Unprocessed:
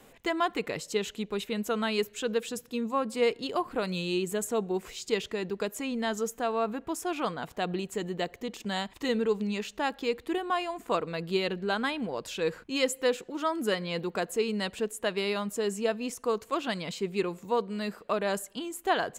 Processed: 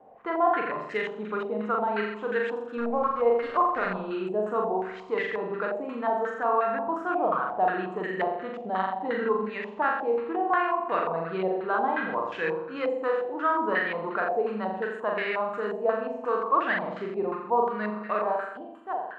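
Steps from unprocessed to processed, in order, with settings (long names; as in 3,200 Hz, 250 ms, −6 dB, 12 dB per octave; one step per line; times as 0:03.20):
fade-out on the ending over 1.33 s
high-pass filter 190 Hz 6 dB per octave
low-shelf EQ 400 Hz −3.5 dB
in parallel at −2 dB: speech leveller within 5 dB 0.5 s
0:02.78–0:03.85: on the sum: centre clipping without the shift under −29 dBFS
on a send: flutter between parallel walls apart 7.3 metres, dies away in 0.88 s
on the sum: rectangular room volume 810 cubic metres, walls furnished, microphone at 0.46 metres
low-pass on a step sequencer 5.6 Hz 730–1,800 Hz
level −6.5 dB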